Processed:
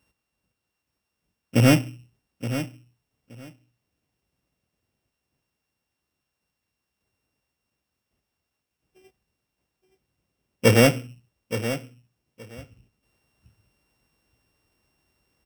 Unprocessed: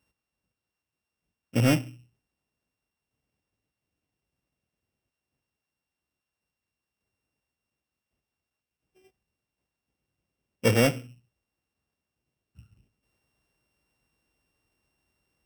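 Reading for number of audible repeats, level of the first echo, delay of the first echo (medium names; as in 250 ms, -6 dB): 2, -11.5 dB, 872 ms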